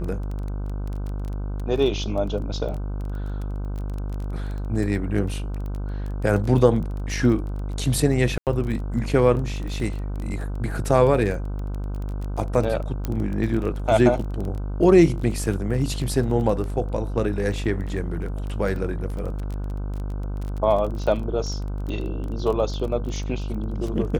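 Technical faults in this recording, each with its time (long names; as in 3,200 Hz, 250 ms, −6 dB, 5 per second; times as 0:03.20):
mains buzz 50 Hz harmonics 31 −28 dBFS
surface crackle 17 per second −29 dBFS
0:08.38–0:08.47: drop-out 88 ms
0:13.05: click −13 dBFS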